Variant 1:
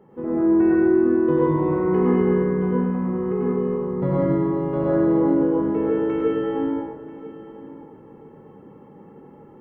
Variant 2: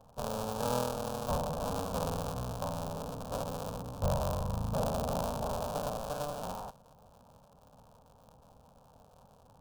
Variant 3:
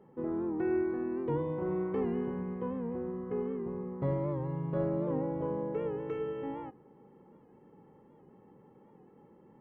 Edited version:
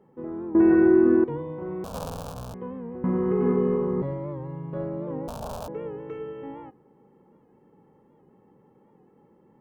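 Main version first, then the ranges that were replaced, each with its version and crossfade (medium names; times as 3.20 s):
3
0.55–1.24 s: from 1
1.84–2.54 s: from 2
3.04–4.02 s: from 1
5.28–5.68 s: from 2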